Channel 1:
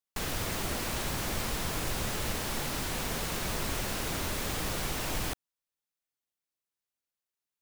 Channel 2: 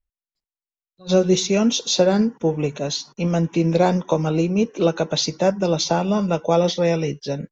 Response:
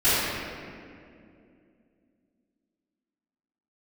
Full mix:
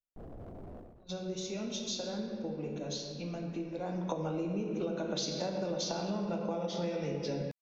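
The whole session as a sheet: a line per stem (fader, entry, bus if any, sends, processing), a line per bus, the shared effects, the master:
-4.5 dB, 0.00 s, no send, elliptic low-pass 710 Hz, stop band 40 dB; limiter -32 dBFS, peak gain reduction 7.5 dB; hard clip -38.5 dBFS, distortion -12 dB; auto duck -17 dB, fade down 0.30 s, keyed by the second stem
3.8 s -15.5 dB -> 4.07 s -4 dB, 0.00 s, send -19 dB, compressor, threshold -21 dBFS, peak gain reduction 10.5 dB; three-band expander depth 40%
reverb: on, RT60 2.5 s, pre-delay 3 ms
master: compressor 6:1, threshold -32 dBFS, peak gain reduction 11.5 dB

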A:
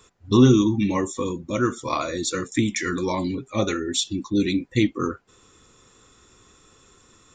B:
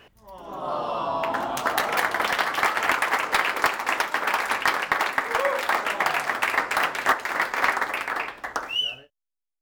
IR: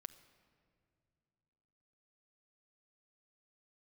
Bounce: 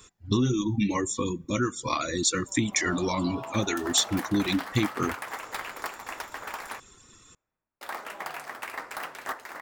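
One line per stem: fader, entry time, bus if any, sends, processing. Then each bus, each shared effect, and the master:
+1.0 dB, 0.00 s, send -13 dB, reverb removal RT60 0.66 s; compressor 6:1, threshold -22 dBFS, peak gain reduction 11.5 dB; bell 610 Hz -6 dB 1.4 oct
-13.5 dB, 2.20 s, muted 6.8–7.81, send -7.5 dB, bell 2400 Hz -3.5 dB 1.8 oct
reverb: on, RT60 2.5 s, pre-delay 6 ms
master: high shelf 6900 Hz +5.5 dB

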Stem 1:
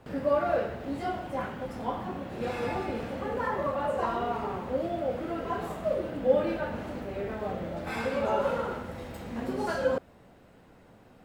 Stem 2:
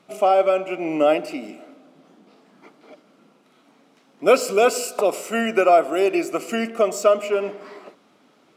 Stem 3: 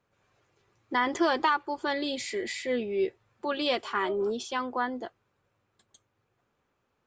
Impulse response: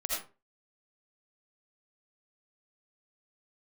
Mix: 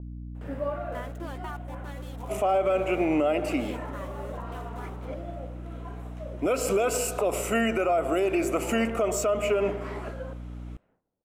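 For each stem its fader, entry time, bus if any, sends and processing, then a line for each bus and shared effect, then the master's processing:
5.29 s -3 dB -> 5.54 s -13.5 dB, 0.35 s, no bus, send -17 dB, low shelf 250 Hz -3 dB; auto duck -11 dB, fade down 0.35 s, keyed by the third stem
+3.0 dB, 2.20 s, bus A, no send, compressor 3:1, threshold -19 dBFS, peak gain reduction 8 dB
-15.0 dB, 0.00 s, bus A, no send, sample gate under -30 dBFS
bus A: 0.0 dB, hum 60 Hz, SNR 14 dB; limiter -16.5 dBFS, peak gain reduction 10.5 dB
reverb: on, RT60 0.35 s, pre-delay 40 ms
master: bell 4700 Hz -9 dB 0.65 oct; expander -59 dBFS; low-pass opened by the level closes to 640 Hz, open at -34.5 dBFS

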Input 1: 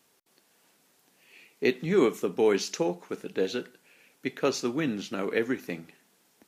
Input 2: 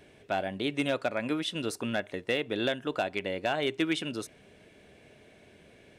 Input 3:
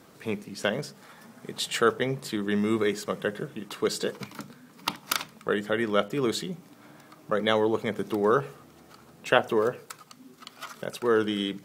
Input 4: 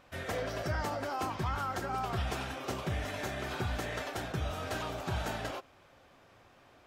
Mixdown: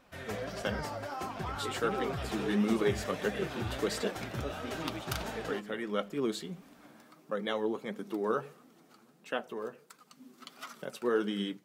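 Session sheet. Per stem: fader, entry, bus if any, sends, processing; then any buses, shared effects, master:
-12.0 dB, 0.00 s, no send, inverse Chebyshev low-pass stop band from 4300 Hz
-12.0 dB, 1.05 s, no send, dry
-13.0 dB, 0.00 s, no send, resonant low shelf 140 Hz -10 dB, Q 1.5; AGC gain up to 14.5 dB
+0.5 dB, 0.00 s, no send, dry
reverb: off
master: flange 1.5 Hz, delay 3.6 ms, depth 5.9 ms, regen +45%

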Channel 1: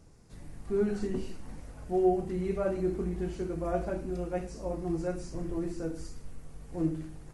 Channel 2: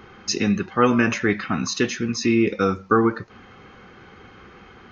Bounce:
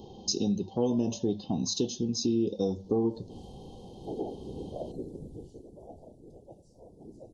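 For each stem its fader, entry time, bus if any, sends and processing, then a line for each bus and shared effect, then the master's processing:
3.06 s -20.5 dB -> 3.49 s -8.5 dB -> 5.18 s -8.5 dB -> 5.89 s -17.5 dB, 2.15 s, no send, whisperiser
+0.5 dB, 0.00 s, no send, notches 50/100 Hz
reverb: off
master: inverse Chebyshev band-stop 1200–2400 Hz, stop band 40 dB; compressor 2:1, threshold -31 dBFS, peak gain reduction 10 dB

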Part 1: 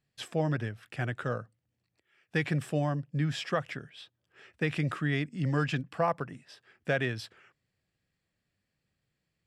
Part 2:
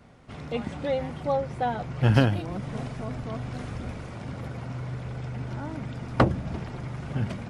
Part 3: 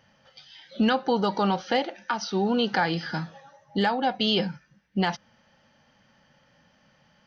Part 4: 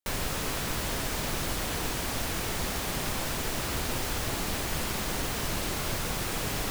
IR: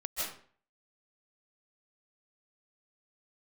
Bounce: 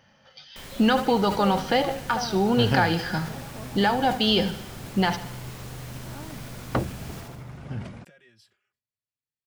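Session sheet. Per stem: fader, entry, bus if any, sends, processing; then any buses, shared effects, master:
-19.5 dB, 1.20 s, no send, no echo send, high shelf 2600 Hz +9.5 dB; limiter -23 dBFS, peak gain reduction 10 dB; endless flanger 4 ms +0.48 Hz
-5.5 dB, 0.55 s, no send, no echo send, dry
+2.0 dB, 0.00 s, no send, echo send -14.5 dB, dry
-7.0 dB, 0.50 s, no send, echo send -8.5 dB, auto duck -9 dB, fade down 1.05 s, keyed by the third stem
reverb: off
echo: feedback echo 74 ms, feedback 56%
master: sustainer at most 140 dB/s

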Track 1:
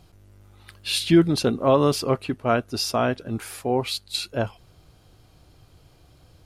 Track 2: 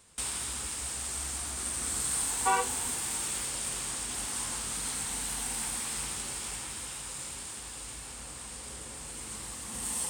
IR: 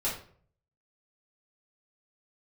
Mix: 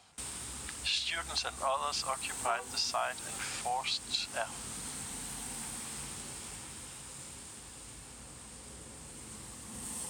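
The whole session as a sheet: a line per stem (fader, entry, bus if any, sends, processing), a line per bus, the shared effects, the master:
+1.5 dB, 0.00 s, no send, elliptic band-pass 760–7500 Hz
-7.5 dB, 0.00 s, no send, low shelf 400 Hz +7.5 dB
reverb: off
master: HPF 74 Hz 12 dB/oct; compressor 2.5:1, threshold -33 dBFS, peak gain reduction 10 dB

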